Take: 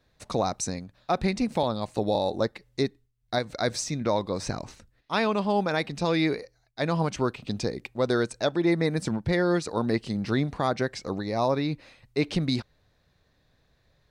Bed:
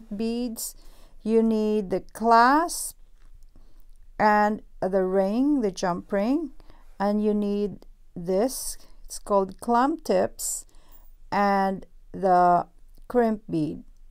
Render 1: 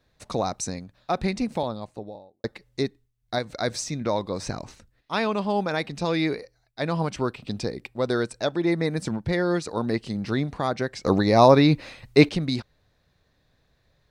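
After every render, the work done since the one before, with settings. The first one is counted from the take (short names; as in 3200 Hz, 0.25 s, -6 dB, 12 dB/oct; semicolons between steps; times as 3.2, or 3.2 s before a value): 1.34–2.44 studio fade out; 6.34–8.4 notch 6500 Hz, Q 11; 11.05–12.29 gain +10.5 dB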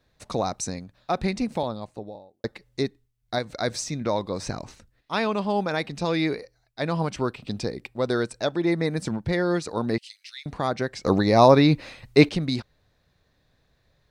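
9.98–10.46 steep high-pass 2200 Hz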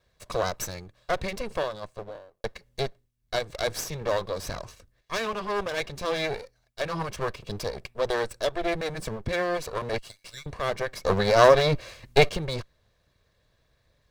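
minimum comb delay 1.8 ms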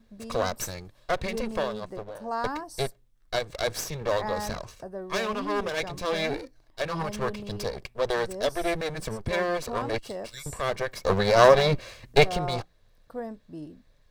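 add bed -14 dB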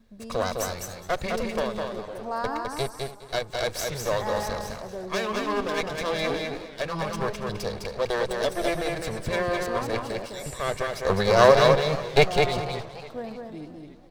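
feedback echo 0.207 s, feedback 17%, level -4 dB; warbling echo 0.285 s, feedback 56%, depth 149 cents, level -16.5 dB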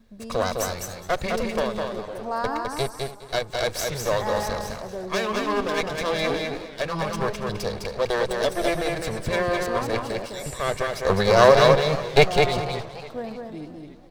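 gain +2.5 dB; limiter -3 dBFS, peak gain reduction 1.5 dB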